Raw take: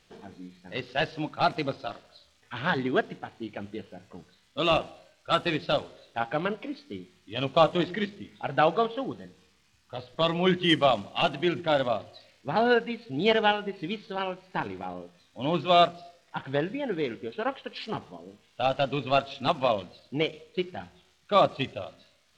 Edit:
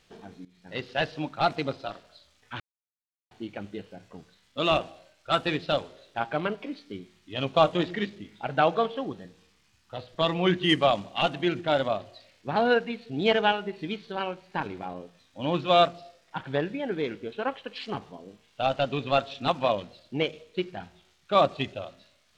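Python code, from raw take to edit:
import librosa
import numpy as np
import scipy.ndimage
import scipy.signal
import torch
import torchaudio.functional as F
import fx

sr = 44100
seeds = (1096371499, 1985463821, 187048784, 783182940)

y = fx.edit(x, sr, fx.fade_in_from(start_s=0.45, length_s=0.37, curve='qsin', floor_db=-19.0),
    fx.silence(start_s=2.6, length_s=0.71), tone=tone)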